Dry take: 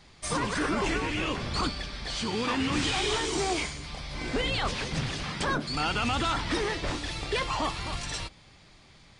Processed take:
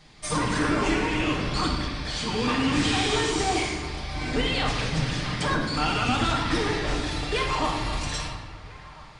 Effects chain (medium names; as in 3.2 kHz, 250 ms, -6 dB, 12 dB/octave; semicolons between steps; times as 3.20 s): feedback echo behind a band-pass 671 ms, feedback 61%, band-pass 1.2 kHz, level -16 dB; reverberation RT60 1.4 s, pre-delay 7 ms, DRR -1 dB